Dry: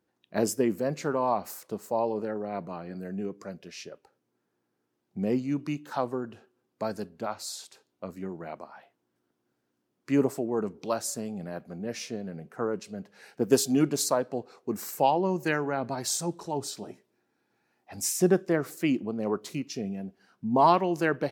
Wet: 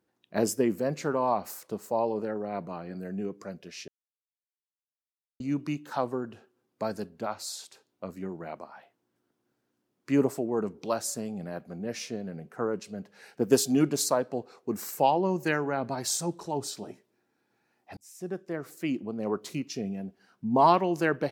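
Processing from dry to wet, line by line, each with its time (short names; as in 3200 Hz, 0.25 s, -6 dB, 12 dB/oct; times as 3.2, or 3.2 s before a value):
3.88–5.4 mute
17.97–19.49 fade in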